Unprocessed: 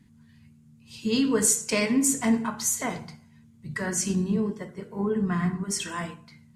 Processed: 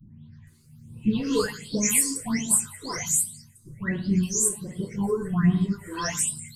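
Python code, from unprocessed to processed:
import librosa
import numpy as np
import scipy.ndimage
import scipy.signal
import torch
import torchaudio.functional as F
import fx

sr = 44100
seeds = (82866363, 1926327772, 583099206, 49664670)

y = fx.spec_delay(x, sr, highs='late', ms=470)
y = fx.low_shelf(y, sr, hz=220.0, db=8.0)
y = fx.phaser_stages(y, sr, stages=6, low_hz=170.0, high_hz=1900.0, hz=1.3, feedback_pct=40)
y = fx.high_shelf(y, sr, hz=3500.0, db=10.5)
y = fx.rider(y, sr, range_db=4, speed_s=0.5)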